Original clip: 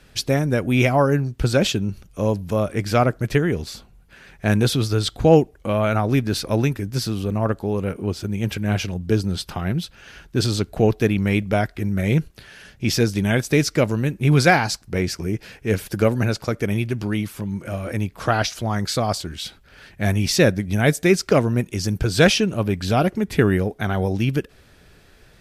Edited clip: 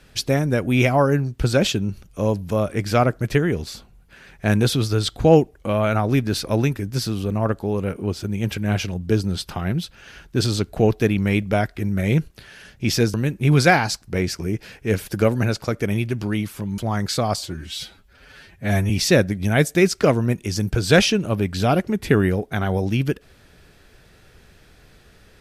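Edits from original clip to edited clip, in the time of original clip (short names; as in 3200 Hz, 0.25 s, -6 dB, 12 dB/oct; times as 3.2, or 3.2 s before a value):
13.14–13.94 cut
17.58–18.57 cut
19.16–20.18 stretch 1.5×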